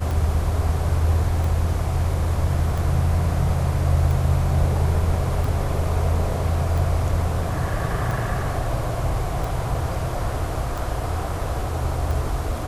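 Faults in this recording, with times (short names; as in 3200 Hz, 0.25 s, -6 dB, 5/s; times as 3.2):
tick 45 rpm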